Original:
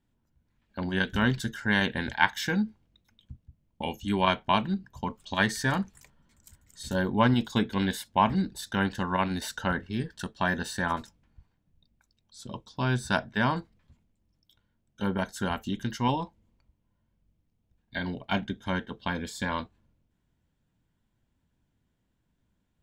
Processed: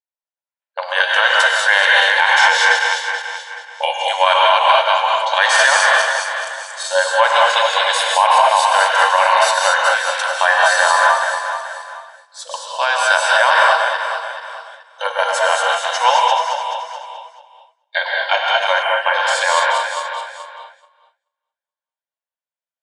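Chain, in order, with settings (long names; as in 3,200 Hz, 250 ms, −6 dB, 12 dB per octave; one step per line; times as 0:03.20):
feedback delay that plays each chunk backwards 215 ms, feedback 58%, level −6 dB
downward expander −47 dBFS
linear-phase brick-wall band-pass 490–11,000 Hz
reverb whose tail is shaped and stops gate 250 ms rising, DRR −0.5 dB
gain on a spectral selection 0:18.82–0:19.14, 3,200–7,300 Hz −15 dB
boost into a limiter +16 dB
level −1 dB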